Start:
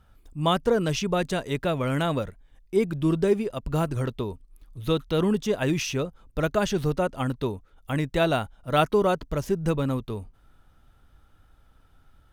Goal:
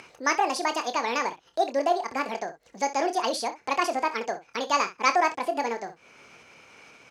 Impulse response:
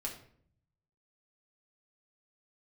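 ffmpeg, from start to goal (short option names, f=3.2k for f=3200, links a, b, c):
-af "aecho=1:1:44|54|111:0.299|0.15|0.178,acompressor=mode=upward:threshold=-26dB:ratio=2.5,asetrate=76440,aresample=44100,highpass=460,lowpass=7.9k"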